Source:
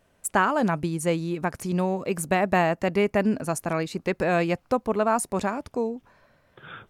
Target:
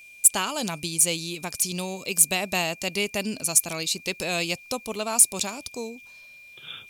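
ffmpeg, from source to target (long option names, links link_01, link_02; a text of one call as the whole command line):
ffmpeg -i in.wav -af "aexciter=amount=5.9:drive=9.6:freq=2600,aeval=exprs='val(0)+0.0126*sin(2*PI*2400*n/s)':channel_layout=same,volume=-7.5dB" out.wav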